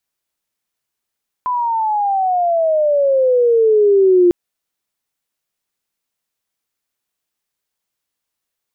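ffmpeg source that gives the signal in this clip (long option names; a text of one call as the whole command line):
ffmpeg -f lavfi -i "aevalsrc='pow(10,(-7+8.5*(t/2.85-1))/20)*sin(2*PI*1010*2.85/(-18.5*log(2)/12)*(exp(-18.5*log(2)/12*t/2.85)-1))':duration=2.85:sample_rate=44100" out.wav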